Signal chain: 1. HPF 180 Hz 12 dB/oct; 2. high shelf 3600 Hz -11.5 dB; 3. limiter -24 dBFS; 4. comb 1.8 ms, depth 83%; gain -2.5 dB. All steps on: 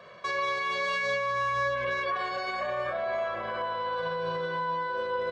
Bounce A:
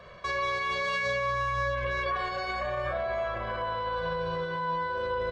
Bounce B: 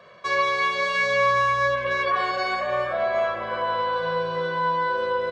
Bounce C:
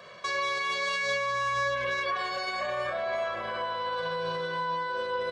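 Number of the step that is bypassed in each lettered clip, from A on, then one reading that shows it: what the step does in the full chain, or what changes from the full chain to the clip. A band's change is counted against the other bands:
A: 1, 125 Hz band +7.0 dB; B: 3, mean gain reduction 6.0 dB; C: 2, 4 kHz band +5.0 dB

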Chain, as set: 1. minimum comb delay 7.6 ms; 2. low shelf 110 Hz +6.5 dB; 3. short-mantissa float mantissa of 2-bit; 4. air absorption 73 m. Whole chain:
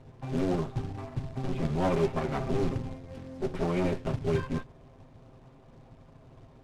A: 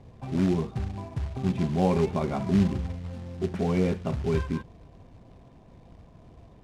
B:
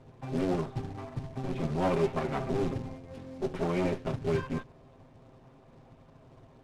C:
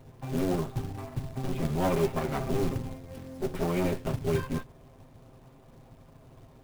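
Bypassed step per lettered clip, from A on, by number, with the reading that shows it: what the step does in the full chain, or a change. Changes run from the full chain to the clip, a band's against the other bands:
1, 250 Hz band +4.0 dB; 2, 125 Hz band -2.0 dB; 4, 8 kHz band +6.5 dB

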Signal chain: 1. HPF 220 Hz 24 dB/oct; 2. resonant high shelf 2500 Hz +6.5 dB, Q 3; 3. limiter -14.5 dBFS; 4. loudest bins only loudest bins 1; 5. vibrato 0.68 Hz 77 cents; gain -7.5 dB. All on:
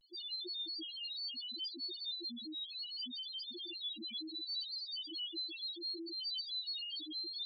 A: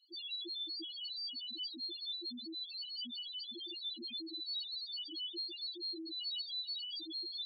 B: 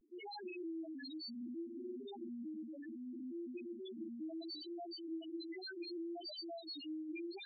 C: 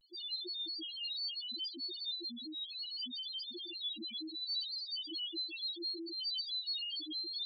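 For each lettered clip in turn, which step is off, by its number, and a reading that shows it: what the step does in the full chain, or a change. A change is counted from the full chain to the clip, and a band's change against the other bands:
5, 2 kHz band -4.0 dB; 2, 4 kHz band -22.0 dB; 3, mean gain reduction 1.5 dB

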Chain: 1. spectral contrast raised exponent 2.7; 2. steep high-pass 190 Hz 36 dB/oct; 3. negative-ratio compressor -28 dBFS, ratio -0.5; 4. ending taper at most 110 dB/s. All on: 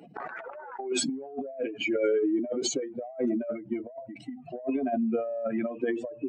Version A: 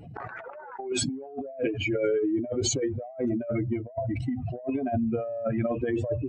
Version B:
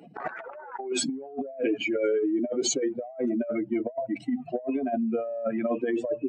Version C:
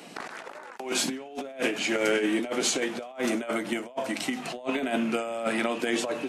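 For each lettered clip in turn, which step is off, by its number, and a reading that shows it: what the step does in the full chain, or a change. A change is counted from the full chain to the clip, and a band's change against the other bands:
2, 125 Hz band +17.0 dB; 4, momentary loudness spread change -4 LU; 1, 2 kHz band +5.5 dB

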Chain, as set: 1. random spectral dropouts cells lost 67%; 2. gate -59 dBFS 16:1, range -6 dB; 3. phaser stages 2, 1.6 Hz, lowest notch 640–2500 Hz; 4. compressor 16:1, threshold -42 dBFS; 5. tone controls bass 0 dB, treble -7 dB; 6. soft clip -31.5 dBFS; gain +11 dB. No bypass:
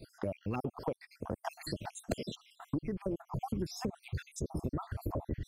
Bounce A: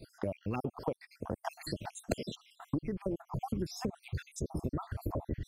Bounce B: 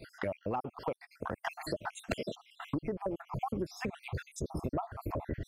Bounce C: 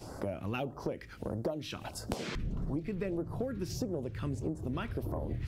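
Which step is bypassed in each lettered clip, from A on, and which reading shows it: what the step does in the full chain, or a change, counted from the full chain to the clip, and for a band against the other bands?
6, distortion -23 dB; 3, 2 kHz band +7.5 dB; 1, 1 kHz band -4.0 dB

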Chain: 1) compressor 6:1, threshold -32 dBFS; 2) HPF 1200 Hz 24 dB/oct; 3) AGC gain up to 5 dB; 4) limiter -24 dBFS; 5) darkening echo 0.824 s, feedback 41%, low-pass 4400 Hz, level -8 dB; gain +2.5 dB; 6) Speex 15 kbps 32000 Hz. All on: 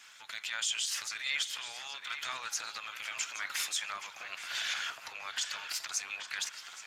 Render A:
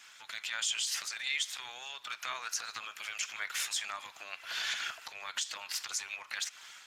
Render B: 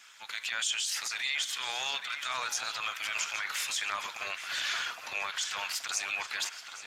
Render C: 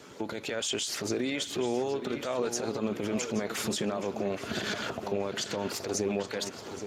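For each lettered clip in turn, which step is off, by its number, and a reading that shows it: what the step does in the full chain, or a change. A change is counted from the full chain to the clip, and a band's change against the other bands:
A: 5, momentary loudness spread change +1 LU; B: 1, mean gain reduction 8.0 dB; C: 2, 250 Hz band +36.0 dB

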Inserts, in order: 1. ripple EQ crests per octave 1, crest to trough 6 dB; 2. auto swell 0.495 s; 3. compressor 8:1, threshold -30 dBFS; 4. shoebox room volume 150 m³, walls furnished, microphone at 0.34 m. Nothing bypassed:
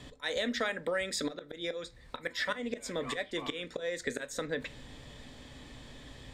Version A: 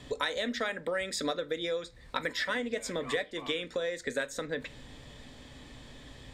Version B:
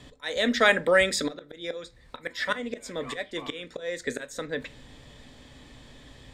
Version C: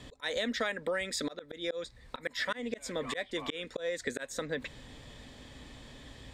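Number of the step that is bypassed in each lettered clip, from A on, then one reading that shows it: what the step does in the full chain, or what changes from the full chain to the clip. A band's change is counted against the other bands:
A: 2, crest factor change +2.5 dB; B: 3, mean gain reduction 2.5 dB; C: 4, echo-to-direct -13.0 dB to none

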